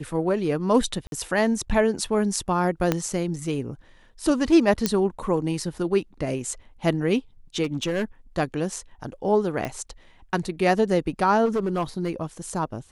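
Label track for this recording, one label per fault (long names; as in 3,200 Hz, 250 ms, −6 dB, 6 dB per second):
1.070000	1.120000	drop-out 52 ms
2.920000	2.920000	click −7 dBFS
4.860000	4.860000	click −6 dBFS
7.630000	8.040000	clipping −21 dBFS
9.650000	9.650000	click −16 dBFS
11.450000	12.230000	clipping −20 dBFS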